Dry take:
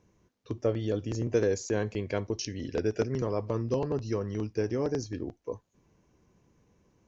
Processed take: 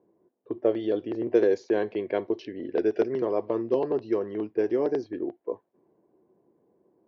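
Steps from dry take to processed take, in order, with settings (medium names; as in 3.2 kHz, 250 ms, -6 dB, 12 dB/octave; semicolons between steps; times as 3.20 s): cabinet simulation 300–3900 Hz, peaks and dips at 360 Hz +8 dB, 680 Hz +4 dB, 1.3 kHz -5 dB, 2.5 kHz -4 dB; level-controlled noise filter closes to 790 Hz, open at -22 dBFS; trim +3 dB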